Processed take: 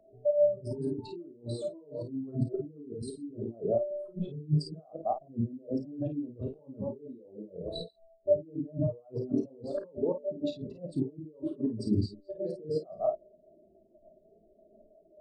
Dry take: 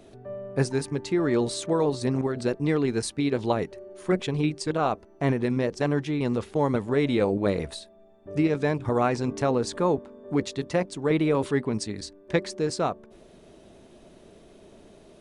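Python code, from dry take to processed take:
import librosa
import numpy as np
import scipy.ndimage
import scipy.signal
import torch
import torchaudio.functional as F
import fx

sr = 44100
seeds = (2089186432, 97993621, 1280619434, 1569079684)

y = fx.reverse_delay(x, sr, ms=135, wet_db=-12)
y = fx.graphic_eq_31(y, sr, hz=(630, 2000, 6300), db=(7, -10, -6))
y = fx.over_compress(y, sr, threshold_db=-34.0, ratio=-1.0)
y = fx.room_early_taps(y, sr, ms=(34, 52), db=(-9.0, -3.5))
y = fx.spectral_expand(y, sr, expansion=2.5)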